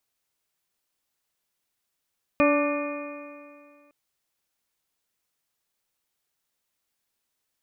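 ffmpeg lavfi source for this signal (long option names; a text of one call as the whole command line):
ffmpeg -f lavfi -i "aevalsrc='0.1*pow(10,-3*t/2.21)*sin(2*PI*289.29*t)+0.112*pow(10,-3*t/2.21)*sin(2*PI*580.31*t)+0.0211*pow(10,-3*t/2.21)*sin(2*PI*874.77*t)+0.0631*pow(10,-3*t/2.21)*sin(2*PI*1174.35*t)+0.0112*pow(10,-3*t/2.21)*sin(2*PI*1480.68*t)+0.02*pow(10,-3*t/2.21)*sin(2*PI*1795.34*t)+0.015*pow(10,-3*t/2.21)*sin(2*PI*2119.81*t)+0.0596*pow(10,-3*t/2.21)*sin(2*PI*2455.51*t)':duration=1.51:sample_rate=44100" out.wav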